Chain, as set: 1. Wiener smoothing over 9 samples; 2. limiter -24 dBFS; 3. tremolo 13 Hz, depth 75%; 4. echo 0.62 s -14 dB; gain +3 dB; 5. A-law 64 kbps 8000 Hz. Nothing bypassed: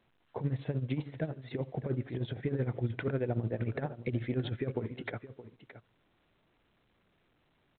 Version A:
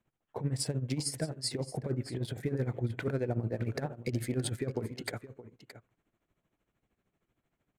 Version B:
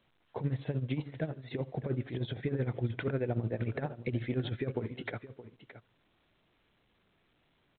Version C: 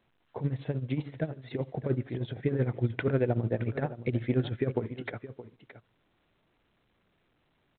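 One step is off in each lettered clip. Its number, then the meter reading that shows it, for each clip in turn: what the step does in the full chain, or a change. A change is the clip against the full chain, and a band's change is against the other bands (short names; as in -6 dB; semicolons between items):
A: 5, 4 kHz band +10.0 dB; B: 1, 4 kHz band +2.0 dB; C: 2, mean gain reduction 2.0 dB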